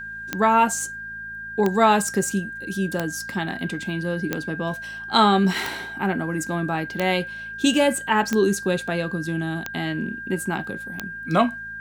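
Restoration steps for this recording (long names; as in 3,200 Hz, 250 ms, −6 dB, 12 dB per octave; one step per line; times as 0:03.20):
click removal
hum removal 54.6 Hz, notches 4
notch filter 1,600 Hz, Q 30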